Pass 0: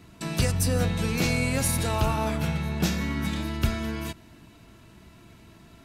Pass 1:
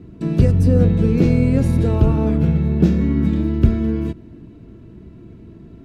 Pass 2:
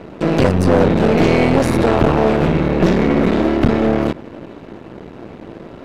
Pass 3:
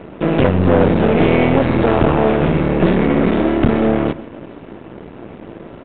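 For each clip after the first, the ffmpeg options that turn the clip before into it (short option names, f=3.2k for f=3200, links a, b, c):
-af "lowpass=f=1.2k:p=1,lowshelf=f=570:t=q:w=1.5:g=10,volume=1dB"
-filter_complex "[0:a]aeval=exprs='max(val(0),0)':c=same,asplit=2[a][b];[b]highpass=f=720:p=1,volume=26dB,asoftclip=type=tanh:threshold=-1dB[c];[a][c]amix=inputs=2:normalize=0,lowpass=f=3.9k:p=1,volume=-6dB"
-af "aecho=1:1:130:0.133,aresample=8000,aresample=44100"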